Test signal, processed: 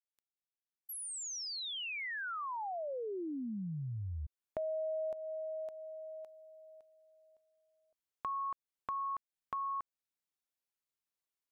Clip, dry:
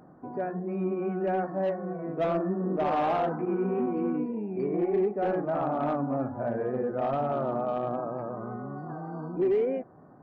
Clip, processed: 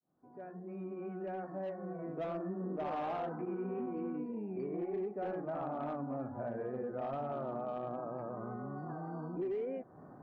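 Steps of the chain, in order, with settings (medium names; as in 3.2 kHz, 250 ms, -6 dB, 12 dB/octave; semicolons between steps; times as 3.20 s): fade-in on the opening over 2.67 s; compression 2.5:1, threshold -41 dBFS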